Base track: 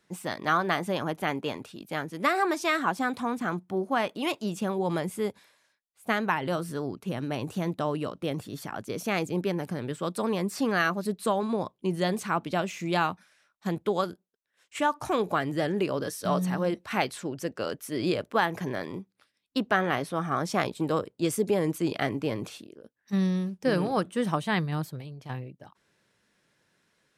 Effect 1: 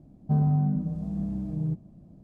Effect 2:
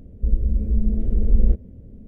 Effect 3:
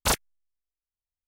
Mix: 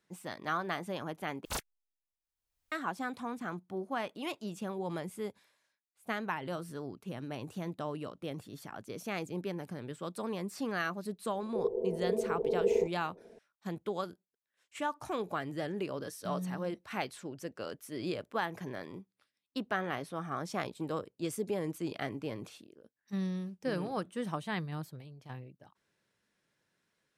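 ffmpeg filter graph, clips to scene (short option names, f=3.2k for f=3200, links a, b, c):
-filter_complex "[0:a]volume=-9dB[a];[3:a]acompressor=mode=upward:threshold=-30dB:ratio=4:attack=0.12:release=776:knee=2.83:detection=peak[b];[2:a]aeval=exprs='val(0)*sin(2*PI*440*n/s)':c=same[c];[a]asplit=2[d][e];[d]atrim=end=1.454[f];[b]atrim=end=1.27,asetpts=PTS-STARTPTS,volume=-13.5dB[g];[e]atrim=start=2.716[h];[c]atrim=end=2.07,asetpts=PTS-STARTPTS,volume=-12.5dB,afade=t=in:d=0.004:c=hsin,afade=t=out:st=2.066:d=0.004:c=hsin,adelay=11320[i];[f][g]acrossfade=d=0.004:c1=hsin:c2=hsin[j];[j][h]acrossfade=d=0.004:c1=hsin:c2=hsin[k];[k][i]amix=inputs=2:normalize=0"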